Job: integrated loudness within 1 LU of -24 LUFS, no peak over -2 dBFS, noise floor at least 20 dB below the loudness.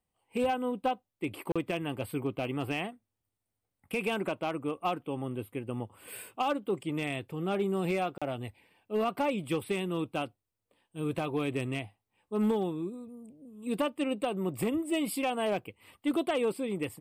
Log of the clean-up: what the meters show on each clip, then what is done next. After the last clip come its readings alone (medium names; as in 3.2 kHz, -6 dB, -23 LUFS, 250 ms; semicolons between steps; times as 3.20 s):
clipped samples 0.4%; clipping level -22.0 dBFS; dropouts 2; longest dropout 36 ms; loudness -33.0 LUFS; peak level -22.0 dBFS; loudness target -24.0 LUFS
-> clip repair -22 dBFS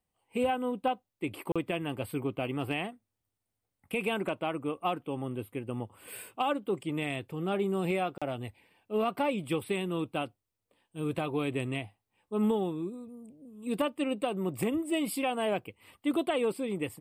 clipped samples 0.0%; dropouts 2; longest dropout 36 ms
-> interpolate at 1.52/8.18 s, 36 ms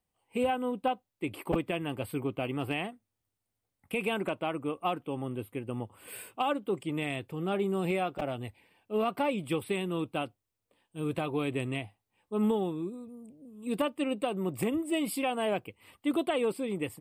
dropouts 0; loudness -33.0 LUFS; peak level -14.0 dBFS; loudness target -24.0 LUFS
-> trim +9 dB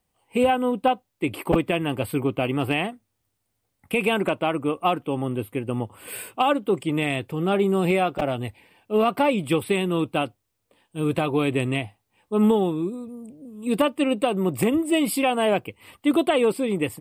loudness -24.0 LUFS; peak level -5.0 dBFS; noise floor -76 dBFS